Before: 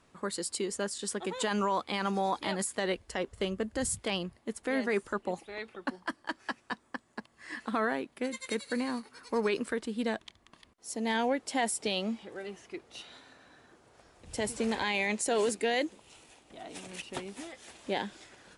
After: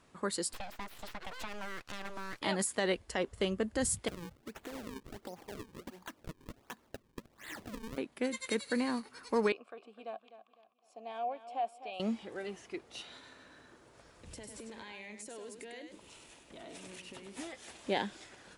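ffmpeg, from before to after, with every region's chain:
-filter_complex "[0:a]asettb=1/sr,asplit=3[a][b][c];[a]atrim=end=0.534[d];[b]atrim=start=0.53:end=2.42,asetpts=PTS-STARTPTS,afade=t=in:d=0.004:c=qsin,afade=t=out:st=1.886:d=0.004:c=qsin,highshelf=f=5.3k:g=-9.5,aeval=exprs='abs(val(0))':c=same,acrossover=split=680|6500[e][f][g];[e]acompressor=threshold=-44dB:ratio=4[h];[f]acompressor=threshold=-43dB:ratio=4[i];[g]acompressor=threshold=-59dB:ratio=4[j];[h][i][j]amix=inputs=3:normalize=0[k];[c]atrim=start=2.416[l];[d][k]acrossfade=d=0.004:c1=hsin:c2=qsin[m];[m][l]acrossfade=d=0.004:c1=qsin:c2=hsin,asettb=1/sr,asplit=3[n][o][p];[n]atrim=end=4.084[q];[o]atrim=start=4.08:end=7.98,asetpts=PTS-STARTPTS,afade=t=in:d=0.004:c=qsin,afade=t=out:st=3.896:d=0.004:c=qsin,acompressor=threshold=-40dB:ratio=8:attack=3.2:release=140:knee=1:detection=peak,acrusher=samples=37:mix=1:aa=0.000001:lfo=1:lforange=59.2:lforate=1.4[r];[p]atrim=start=7.976[s];[q][r]acrossfade=d=0.004:c1=hsin:c2=qsin[t];[t][s]acrossfade=d=0.004:c1=qsin:c2=hsin,asettb=1/sr,asplit=3[u][v][w];[u]atrim=end=9.524[x];[v]atrim=start=9.52:end=12,asetpts=PTS-STARTPTS,afade=t=in:d=0.004:c=qsin,afade=t=out:st=2.476:d=0.004:c=qsin,asplit=3[y][z][aa];[y]bandpass=f=730:t=q:w=8,volume=0dB[ab];[z]bandpass=f=1.09k:t=q:w=8,volume=-6dB[ac];[aa]bandpass=f=2.44k:t=q:w=8,volume=-9dB[ad];[ab][ac][ad]amix=inputs=3:normalize=0,bandreject=f=6k:w=22,aecho=1:1:253|506|759:0.224|0.0761|0.0259,atrim=end_sample=109368[ae];[w]atrim=start=11.996[af];[x][ae]acrossfade=d=0.004:c1=hsin:c2=qsin[ag];[ag][af]acrossfade=d=0.004:c1=qsin:c2=hsin,asettb=1/sr,asplit=3[ah][ai][aj];[ah]atrim=end=13.134[ak];[ai]atrim=start=13.13:end=17.37,asetpts=PTS-STARTPTS,afade=t=in:d=0.004:c=qsin,afade=t=out:st=4.236:d=0.004:c=qsin,bandreject=f=760:w=8.3,acompressor=threshold=-45dB:ratio=8:attack=3.2:release=140:knee=1:detection=peak,aecho=1:1:100:0.447,atrim=end_sample=186984[al];[aj]atrim=start=17.366[am];[ak][al]acrossfade=d=0.004:c1=hsin:c2=qsin[an];[an][am]acrossfade=d=0.004:c1=qsin:c2=hsin"

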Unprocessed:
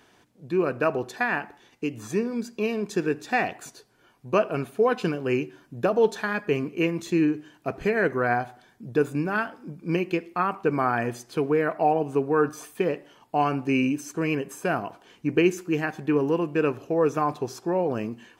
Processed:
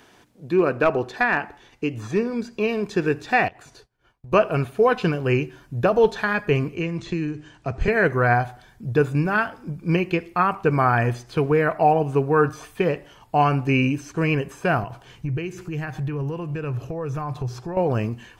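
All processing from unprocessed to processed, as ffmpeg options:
-filter_complex "[0:a]asettb=1/sr,asplit=3[a][b][c];[a]atrim=end=0.534[d];[b]atrim=start=0.53:end=2.69,asetpts=PTS-STARTPTS,afade=t=in:d=0.004:c=qsin,afade=t=out:st=2.156:d=0.004:c=qsin,highshelf=f=8.4k:g=-8,asoftclip=type=hard:threshold=-15dB[e];[c]atrim=start=2.686[f];[d][e]acrossfade=d=0.004:c1=hsin:c2=qsin[g];[g][f]acrossfade=d=0.004:c1=qsin:c2=hsin,asettb=1/sr,asplit=3[h][i][j];[h]atrim=end=3.484[k];[i]atrim=start=3.48:end=4.32,asetpts=PTS-STARTPTS,afade=t=in:d=0.004:c=qsin,afade=t=out:st=0.836:d=0.004:c=qsin,agate=range=-33dB:threshold=-53dB:ratio=3:release=100:detection=peak,highshelf=f=8.2k:g=-11,acompressor=threshold=-47dB:ratio=8:attack=3.2:release=140:knee=1:detection=peak[l];[j]atrim=start=4.316[m];[k][l]acrossfade=d=0.004:c1=hsin:c2=qsin[n];[n][m]acrossfade=d=0.004:c1=qsin:c2=hsin,asettb=1/sr,asplit=3[o][p][q];[o]atrim=end=6.764[r];[p]atrim=start=6.76:end=7.88,asetpts=PTS-STARTPTS,afade=t=in:d=0.004:c=qsin,afade=t=out:st=1.116:d=0.004:c=qsin,acrossover=split=220|4600[s][t][u];[s]acompressor=threshold=-34dB:ratio=4[v];[t]acompressor=threshold=-31dB:ratio=4[w];[u]acompressor=threshold=-51dB:ratio=4[x];[v][w][x]amix=inputs=3:normalize=0,lowpass=f=8.2k:w=0.5412,lowpass=f=8.2k:w=1.3066[y];[q]atrim=start=7.876[z];[r][y]acrossfade=d=0.004:c1=hsin:c2=qsin[aa];[aa][z]acrossfade=d=0.004:c1=qsin:c2=hsin,asettb=1/sr,asplit=3[ab][ac][ad];[ab]atrim=end=14.834[ae];[ac]atrim=start=14.83:end=17.77,asetpts=PTS-STARTPTS,afade=t=in:d=0.004:c=qsin,afade=t=out:st=2.936:d=0.004:c=qsin,equalizer=f=130:w=4.5:g=13,acompressor=threshold=-36dB:ratio=2.5:attack=3.2:release=140:knee=1:detection=peak[af];[ad]atrim=start=17.766[ag];[ae][af]acrossfade=d=0.004:c1=hsin:c2=qsin[ah];[ah][ag]acrossfade=d=0.004:c1=qsin:c2=hsin,acrossover=split=4800[ai][aj];[aj]acompressor=threshold=-57dB:ratio=4:attack=1:release=60[ak];[ai][ak]amix=inputs=2:normalize=0,asubboost=boost=8:cutoff=88,volume=5.5dB"

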